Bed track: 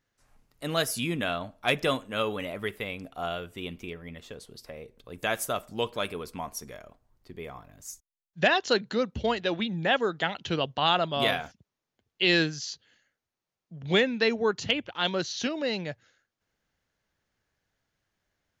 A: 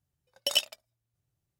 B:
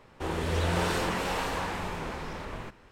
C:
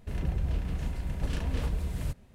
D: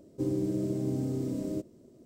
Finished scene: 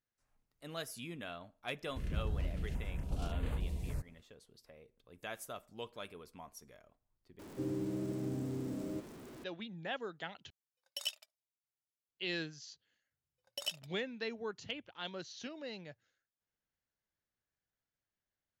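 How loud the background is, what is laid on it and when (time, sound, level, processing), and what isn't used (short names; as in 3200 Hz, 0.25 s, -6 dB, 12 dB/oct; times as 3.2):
bed track -15.5 dB
1.89 add C -6.5 dB + stepped notch 3.5 Hz 840–5400 Hz
7.39 replace with D -8.5 dB + zero-crossing step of -38.5 dBFS
10.5 replace with A -12 dB + HPF 1400 Hz 6 dB/oct
13.11 add A -13 dB
not used: B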